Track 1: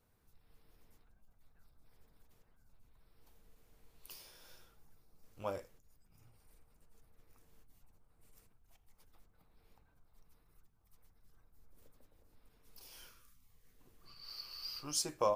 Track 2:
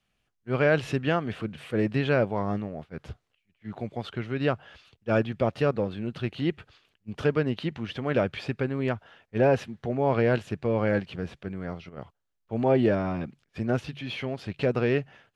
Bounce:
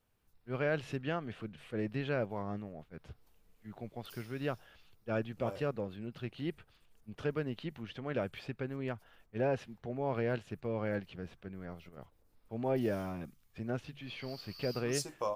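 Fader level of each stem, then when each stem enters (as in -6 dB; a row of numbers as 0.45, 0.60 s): -3.5, -10.5 dB; 0.00, 0.00 s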